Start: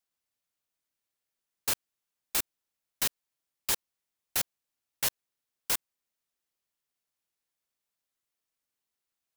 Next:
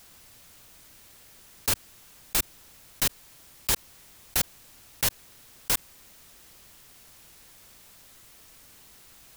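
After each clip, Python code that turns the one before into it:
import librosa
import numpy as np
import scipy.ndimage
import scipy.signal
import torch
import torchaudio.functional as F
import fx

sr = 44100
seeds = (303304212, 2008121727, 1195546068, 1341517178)

y = fx.low_shelf(x, sr, hz=160.0, db=11.5)
y = fx.env_flatten(y, sr, amount_pct=50)
y = y * 10.0 ** (3.0 / 20.0)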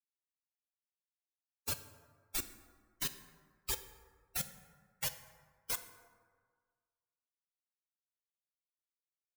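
y = fx.bin_expand(x, sr, power=3.0)
y = fx.rev_plate(y, sr, seeds[0], rt60_s=1.7, hf_ratio=0.45, predelay_ms=0, drr_db=9.5)
y = y * 10.0 ** (-6.0 / 20.0)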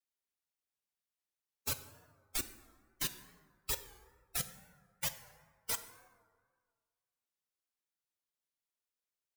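y = fx.wow_flutter(x, sr, seeds[1], rate_hz=2.1, depth_cents=110.0)
y = y * 10.0 ** (1.0 / 20.0)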